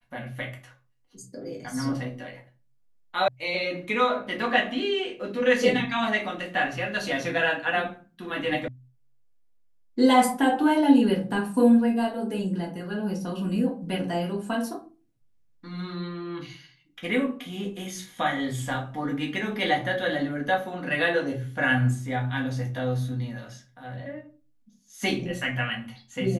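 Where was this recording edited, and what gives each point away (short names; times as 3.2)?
3.28 sound cut off
8.68 sound cut off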